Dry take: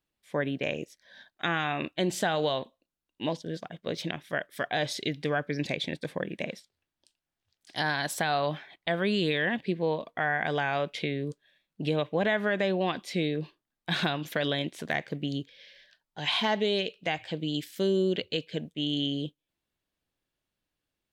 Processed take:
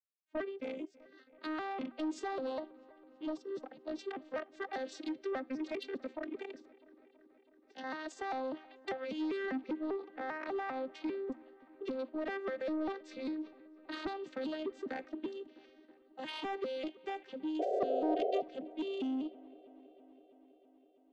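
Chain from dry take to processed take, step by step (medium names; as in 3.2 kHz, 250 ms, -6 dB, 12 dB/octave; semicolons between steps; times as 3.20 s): vocoder on a broken chord minor triad, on C4, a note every 198 ms; expander -58 dBFS; harmonic-percussive split harmonic -8 dB; in parallel at 0 dB: peak limiter -29 dBFS, peak gain reduction 11 dB; 6.50–7.84 s: on the sum: compression, threshold -40 dBFS, peak gain reduction 8.5 dB; feedback comb 240 Hz, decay 0.4 s, harmonics odd, mix 40%; saturation -31 dBFS, distortion -14 dB; 17.59–18.42 s: painted sound noise 370–770 Hz -34 dBFS; on a send: feedback echo behind a low-pass 326 ms, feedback 72%, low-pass 2.7 kHz, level -22 dB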